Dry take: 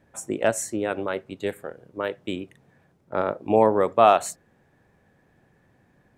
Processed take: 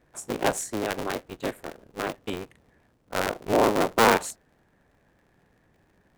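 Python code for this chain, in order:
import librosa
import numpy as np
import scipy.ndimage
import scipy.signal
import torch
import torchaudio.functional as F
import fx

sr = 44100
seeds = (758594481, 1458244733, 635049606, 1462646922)

p1 = fx.cycle_switch(x, sr, every=3, mode='inverted')
p2 = np.clip(p1, -10.0 ** (-12.5 / 20.0), 10.0 ** (-12.5 / 20.0))
p3 = p1 + F.gain(torch.from_numpy(p2), -9.0).numpy()
y = F.gain(torch.from_numpy(p3), -5.0).numpy()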